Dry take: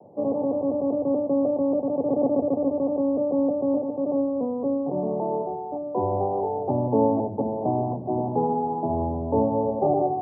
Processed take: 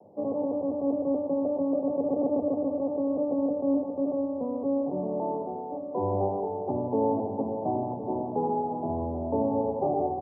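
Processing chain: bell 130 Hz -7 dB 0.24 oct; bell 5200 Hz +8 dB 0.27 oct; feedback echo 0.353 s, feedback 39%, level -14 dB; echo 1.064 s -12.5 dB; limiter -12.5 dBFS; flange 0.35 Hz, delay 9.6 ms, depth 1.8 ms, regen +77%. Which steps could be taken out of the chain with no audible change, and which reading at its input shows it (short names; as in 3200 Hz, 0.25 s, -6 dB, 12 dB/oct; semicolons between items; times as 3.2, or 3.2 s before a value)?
bell 5200 Hz: input band ends at 1000 Hz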